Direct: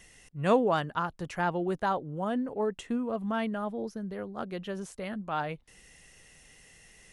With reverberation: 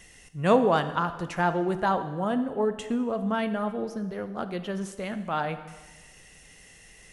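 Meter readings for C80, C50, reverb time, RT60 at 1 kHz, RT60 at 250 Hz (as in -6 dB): 13.0 dB, 11.5 dB, 1.3 s, 1.3 s, 1.3 s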